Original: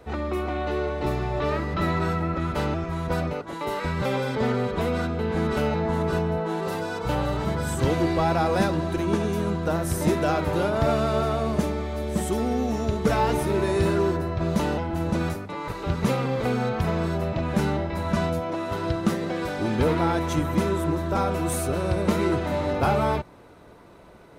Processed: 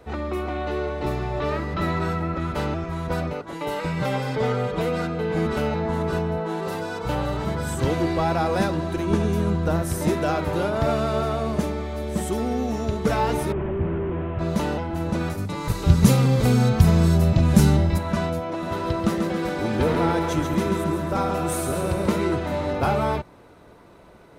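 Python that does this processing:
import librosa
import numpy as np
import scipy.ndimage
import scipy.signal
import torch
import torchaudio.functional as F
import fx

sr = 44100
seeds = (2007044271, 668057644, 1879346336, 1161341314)

y = fx.comb(x, sr, ms=6.5, depth=0.58, at=(3.54, 5.46))
y = fx.low_shelf(y, sr, hz=140.0, db=9.5, at=(9.1, 9.82))
y = fx.delta_mod(y, sr, bps=16000, step_db=-42.0, at=(13.52, 14.39))
y = fx.bass_treble(y, sr, bass_db=12, treble_db=14, at=(15.37, 17.97), fade=0.02)
y = fx.echo_feedback(y, sr, ms=138, feedback_pct=51, wet_db=-6, at=(18.61, 22.17), fade=0.02)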